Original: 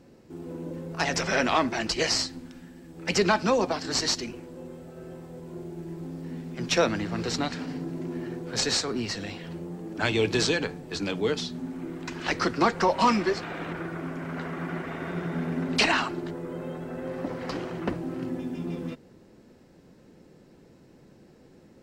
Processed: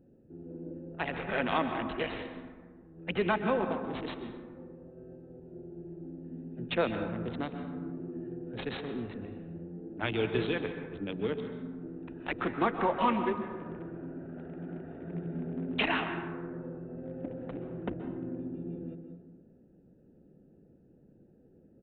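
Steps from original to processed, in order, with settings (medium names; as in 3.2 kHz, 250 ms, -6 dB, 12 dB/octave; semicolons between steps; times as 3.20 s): local Wiener filter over 41 samples; on a send at -7 dB: reverberation RT60 1.5 s, pre-delay 118 ms; on the sum: resampled via 8 kHz; trim -5.5 dB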